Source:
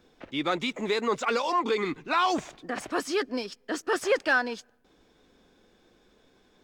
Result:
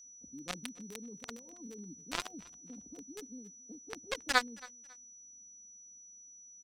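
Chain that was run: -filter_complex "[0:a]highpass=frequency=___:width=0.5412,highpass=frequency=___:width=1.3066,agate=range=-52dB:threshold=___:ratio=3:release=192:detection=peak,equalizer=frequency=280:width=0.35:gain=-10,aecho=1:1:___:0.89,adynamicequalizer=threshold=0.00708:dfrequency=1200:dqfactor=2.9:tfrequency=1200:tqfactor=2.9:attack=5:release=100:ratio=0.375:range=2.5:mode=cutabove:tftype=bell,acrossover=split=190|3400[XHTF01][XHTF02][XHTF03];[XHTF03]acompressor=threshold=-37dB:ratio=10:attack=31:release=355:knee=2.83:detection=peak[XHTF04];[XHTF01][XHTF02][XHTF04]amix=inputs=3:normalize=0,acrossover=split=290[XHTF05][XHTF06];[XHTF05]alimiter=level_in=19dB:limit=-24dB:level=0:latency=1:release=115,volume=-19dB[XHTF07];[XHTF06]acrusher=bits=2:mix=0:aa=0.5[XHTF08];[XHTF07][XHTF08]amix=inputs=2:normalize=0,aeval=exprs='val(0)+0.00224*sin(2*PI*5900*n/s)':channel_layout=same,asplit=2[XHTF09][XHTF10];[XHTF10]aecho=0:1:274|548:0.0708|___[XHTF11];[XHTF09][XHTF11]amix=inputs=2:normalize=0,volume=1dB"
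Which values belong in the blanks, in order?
72, 72, -56dB, 4.1, 0.0198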